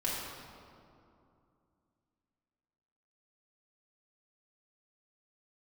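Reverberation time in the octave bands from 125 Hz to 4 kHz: 3.1 s, 3.2 s, 2.7 s, 2.5 s, 1.8 s, 1.4 s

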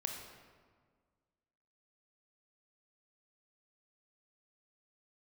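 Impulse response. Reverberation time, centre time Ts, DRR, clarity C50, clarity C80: 1.7 s, 50 ms, 2.0 dB, 3.5 dB, 5.5 dB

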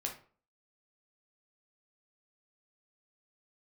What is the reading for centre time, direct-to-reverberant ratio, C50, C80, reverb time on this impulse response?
19 ms, 0.5 dB, 8.5 dB, 15.0 dB, 0.45 s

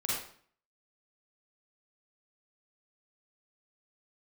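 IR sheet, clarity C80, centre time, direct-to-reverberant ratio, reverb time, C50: 3.5 dB, 64 ms, -6.5 dB, 0.50 s, -2.0 dB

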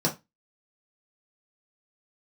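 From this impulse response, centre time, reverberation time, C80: 14 ms, 0.20 s, 22.5 dB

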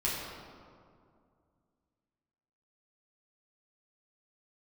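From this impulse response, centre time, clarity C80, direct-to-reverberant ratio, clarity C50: 105 ms, 1.5 dB, -7.5 dB, 0.0 dB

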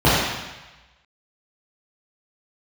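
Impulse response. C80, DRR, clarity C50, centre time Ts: 0.5 dB, -11.0 dB, -2.0 dB, 94 ms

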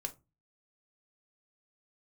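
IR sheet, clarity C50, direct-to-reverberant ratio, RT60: 18.0 dB, 5.0 dB, 0.25 s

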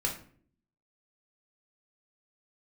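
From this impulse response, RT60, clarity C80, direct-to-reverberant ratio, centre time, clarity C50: 0.55 s, 13.0 dB, -1.5 dB, 22 ms, 8.0 dB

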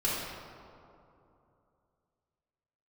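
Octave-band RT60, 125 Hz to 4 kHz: 3.3 s, 3.0 s, 2.9 s, 2.7 s, 1.7 s, 1.2 s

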